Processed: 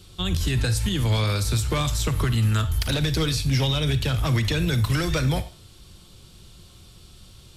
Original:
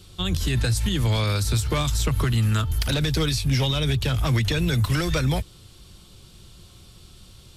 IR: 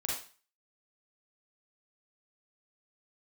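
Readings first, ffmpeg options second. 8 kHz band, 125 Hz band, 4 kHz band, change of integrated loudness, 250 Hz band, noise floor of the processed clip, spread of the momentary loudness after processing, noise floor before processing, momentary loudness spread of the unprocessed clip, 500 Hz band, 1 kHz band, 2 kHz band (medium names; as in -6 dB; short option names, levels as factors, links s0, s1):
0.0 dB, 0.0 dB, 0.0 dB, 0.0 dB, 0.0 dB, -49 dBFS, 2 LU, -49 dBFS, 2 LU, -0.5 dB, 0.0 dB, 0.0 dB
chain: -filter_complex "[0:a]asplit=2[s0][s1];[1:a]atrim=start_sample=2205[s2];[s1][s2]afir=irnorm=-1:irlink=0,volume=0.237[s3];[s0][s3]amix=inputs=2:normalize=0,volume=0.794"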